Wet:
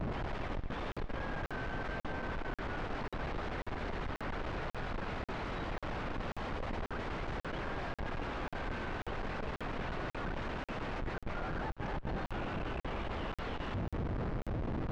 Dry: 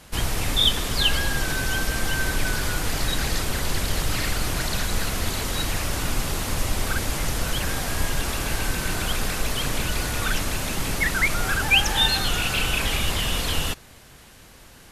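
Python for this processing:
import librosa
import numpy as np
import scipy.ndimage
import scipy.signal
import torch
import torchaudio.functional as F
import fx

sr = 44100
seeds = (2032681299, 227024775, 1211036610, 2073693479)

y = fx.low_shelf(x, sr, hz=370.0, db=-10.0)
y = fx.hum_notches(y, sr, base_hz=50, count=3)
y = fx.over_compress(y, sr, threshold_db=-36.0, ratio=-1.0)
y = fx.schmitt(y, sr, flips_db=-36.0)
y = fx.spacing_loss(y, sr, db_at_10k=39)
y = fx.echo_feedback(y, sr, ms=232, feedback_pct=27, wet_db=-14.5)
y = fx.buffer_crackle(y, sr, first_s=0.92, period_s=0.54, block=2048, kind='zero')
y = y * librosa.db_to_amplitude(1.5)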